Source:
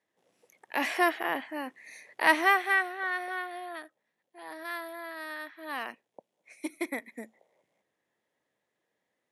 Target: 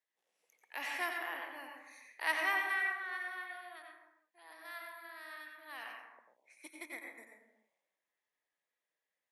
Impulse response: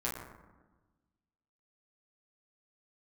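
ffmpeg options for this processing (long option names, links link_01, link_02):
-filter_complex "[0:a]highpass=frequency=1400:poles=1,asplit=2[link_01][link_02];[link_02]equalizer=frequency=2500:width_type=o:width=0.64:gain=5.5[link_03];[1:a]atrim=start_sample=2205,afade=type=out:start_time=0.42:duration=0.01,atrim=end_sample=18963,adelay=89[link_04];[link_03][link_04]afir=irnorm=-1:irlink=0,volume=-6.5dB[link_05];[link_01][link_05]amix=inputs=2:normalize=0,volume=-8.5dB"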